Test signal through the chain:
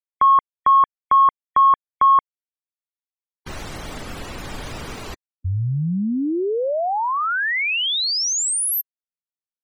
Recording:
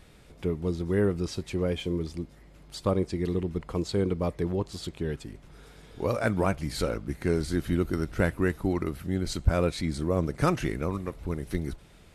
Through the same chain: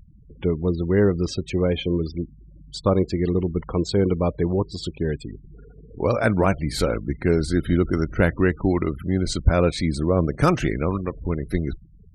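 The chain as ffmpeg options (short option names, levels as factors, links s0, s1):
-af "acontrast=76,afftfilt=real='re*gte(hypot(re,im),0.0178)':imag='im*gte(hypot(re,im),0.0178)':win_size=1024:overlap=0.75"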